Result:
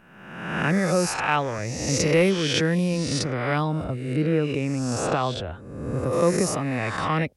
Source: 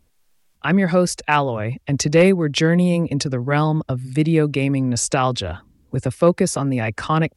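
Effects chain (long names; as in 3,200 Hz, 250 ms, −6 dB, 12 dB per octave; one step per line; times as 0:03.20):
peak hold with a rise ahead of every peak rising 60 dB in 1.14 s
0:03.84–0:06.13: high-shelf EQ 3,200 Hz −10 dB
level −7 dB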